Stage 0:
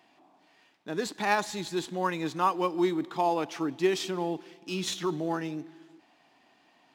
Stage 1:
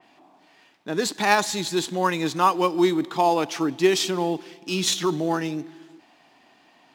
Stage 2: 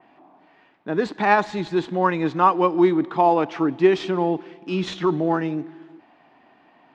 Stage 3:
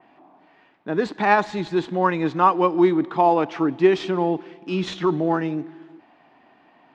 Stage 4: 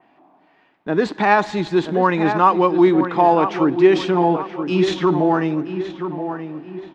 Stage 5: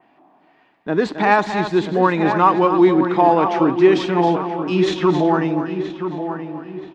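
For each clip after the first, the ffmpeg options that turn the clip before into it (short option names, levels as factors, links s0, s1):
-af "adynamicequalizer=threshold=0.00708:dfrequency=3100:dqfactor=0.7:tfrequency=3100:tqfactor=0.7:attack=5:release=100:ratio=0.375:range=2.5:mode=boostabove:tftype=highshelf,volume=2.11"
-af "lowpass=1900,volume=1.41"
-af anull
-filter_complex "[0:a]asplit=2[s0][s1];[s1]adelay=976,lowpass=f=2300:p=1,volume=0.335,asplit=2[s2][s3];[s3]adelay=976,lowpass=f=2300:p=1,volume=0.43,asplit=2[s4][s5];[s5]adelay=976,lowpass=f=2300:p=1,volume=0.43,asplit=2[s6][s7];[s7]adelay=976,lowpass=f=2300:p=1,volume=0.43,asplit=2[s8][s9];[s9]adelay=976,lowpass=f=2300:p=1,volume=0.43[s10];[s0][s2][s4][s6][s8][s10]amix=inputs=6:normalize=0,agate=range=0.501:threshold=0.00708:ratio=16:detection=peak,asplit=2[s11][s12];[s12]alimiter=limit=0.224:level=0:latency=1:release=33,volume=0.708[s13];[s11][s13]amix=inputs=2:normalize=0"
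-af "aecho=1:1:268:0.335"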